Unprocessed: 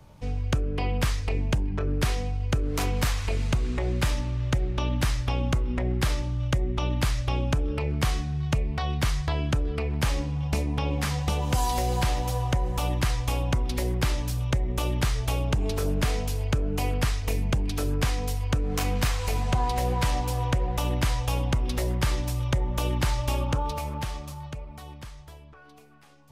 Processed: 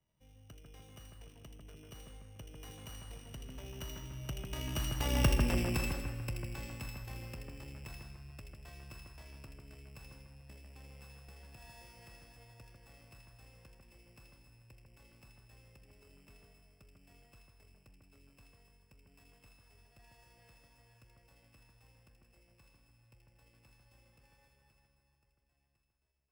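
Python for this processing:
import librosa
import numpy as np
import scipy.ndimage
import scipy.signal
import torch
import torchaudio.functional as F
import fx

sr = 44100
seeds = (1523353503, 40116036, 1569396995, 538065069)

y = np.r_[np.sort(x[:len(x) // 16 * 16].reshape(-1, 16), axis=1).ravel(), x[len(x) // 16 * 16:]]
y = fx.doppler_pass(y, sr, speed_mps=18, closest_m=3.9, pass_at_s=5.31)
y = fx.low_shelf(y, sr, hz=130.0, db=-4.0)
y = fx.echo_split(y, sr, split_hz=2100.0, low_ms=146, high_ms=80, feedback_pct=52, wet_db=-3.5)
y = y * 10.0 ** (-1.5 / 20.0)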